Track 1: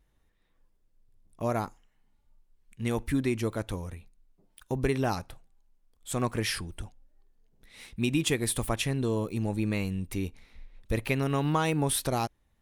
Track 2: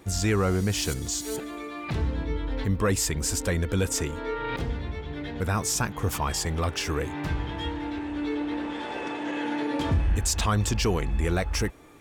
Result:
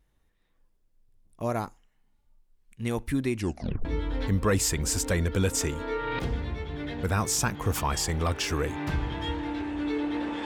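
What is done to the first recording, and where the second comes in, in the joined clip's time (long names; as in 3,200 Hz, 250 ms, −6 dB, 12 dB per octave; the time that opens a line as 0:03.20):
track 1
0:03.37: tape stop 0.48 s
0:03.85: continue with track 2 from 0:02.22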